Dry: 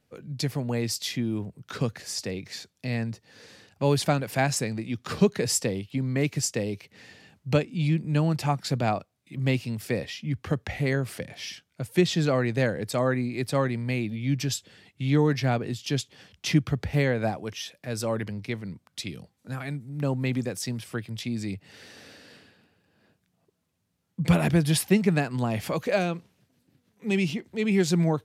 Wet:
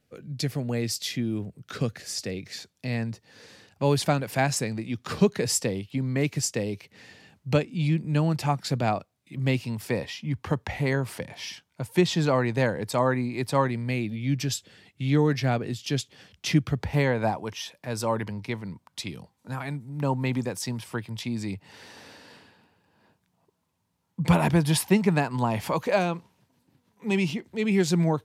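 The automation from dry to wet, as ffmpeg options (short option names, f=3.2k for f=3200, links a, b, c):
-af "asetnsamples=n=441:p=0,asendcmd='2.59 equalizer g 2;9.64 equalizer g 11;13.71 equalizer g 0;16.81 equalizer g 12;27.31 equalizer g 3.5',equalizer=f=940:t=o:w=0.39:g=-6.5"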